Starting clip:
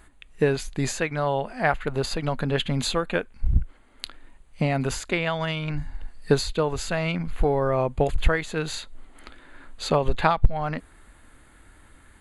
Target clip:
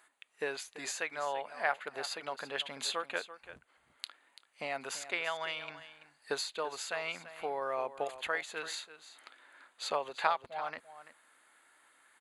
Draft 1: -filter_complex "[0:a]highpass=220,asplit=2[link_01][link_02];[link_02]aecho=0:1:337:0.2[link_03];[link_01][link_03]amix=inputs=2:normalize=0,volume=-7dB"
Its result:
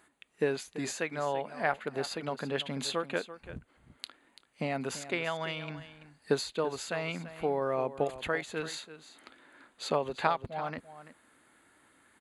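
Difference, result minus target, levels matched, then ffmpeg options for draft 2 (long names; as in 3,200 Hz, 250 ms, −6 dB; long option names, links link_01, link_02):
250 Hz band +11.0 dB
-filter_complex "[0:a]highpass=690,asplit=2[link_01][link_02];[link_02]aecho=0:1:337:0.2[link_03];[link_01][link_03]amix=inputs=2:normalize=0,volume=-7dB"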